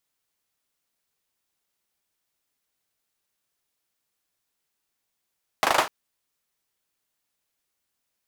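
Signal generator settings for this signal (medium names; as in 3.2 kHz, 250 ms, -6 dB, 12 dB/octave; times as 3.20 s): hand clap length 0.25 s, bursts 5, apart 38 ms, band 850 Hz, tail 0.26 s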